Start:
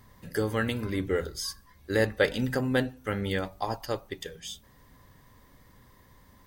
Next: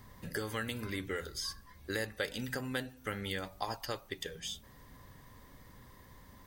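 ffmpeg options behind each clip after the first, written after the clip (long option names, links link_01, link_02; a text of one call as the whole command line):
ffmpeg -i in.wav -filter_complex "[0:a]acrossover=split=1200|4800[link_01][link_02][link_03];[link_01]acompressor=threshold=-40dB:ratio=4[link_04];[link_02]acompressor=threshold=-40dB:ratio=4[link_05];[link_03]acompressor=threshold=-46dB:ratio=4[link_06];[link_04][link_05][link_06]amix=inputs=3:normalize=0,volume=1dB" out.wav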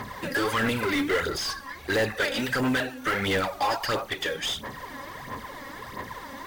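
ffmpeg -i in.wav -filter_complex "[0:a]aphaser=in_gain=1:out_gain=1:delay=3.7:decay=0.6:speed=1.5:type=sinusoidal,asplit=2[link_01][link_02];[link_02]highpass=frequency=720:poles=1,volume=29dB,asoftclip=type=tanh:threshold=-15dB[link_03];[link_01][link_03]amix=inputs=2:normalize=0,lowpass=frequency=2100:poles=1,volume=-6dB,acrusher=bits=6:mode=log:mix=0:aa=0.000001" out.wav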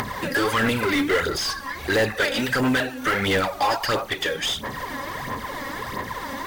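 ffmpeg -i in.wav -af "acompressor=mode=upward:threshold=-28dB:ratio=2.5,volume=4dB" out.wav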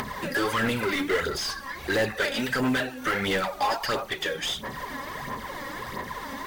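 ffmpeg -i in.wav -af "flanger=delay=4.5:depth=1.3:regen=-61:speed=0.79:shape=triangular" out.wav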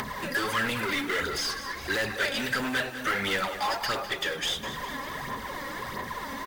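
ffmpeg -i in.wav -filter_complex "[0:a]acrossover=split=1100[link_01][link_02];[link_01]asoftclip=type=tanh:threshold=-31dB[link_03];[link_03][link_02]amix=inputs=2:normalize=0,aecho=1:1:204|408|612|816|1020|1224:0.237|0.133|0.0744|0.0416|0.0233|0.0131" out.wav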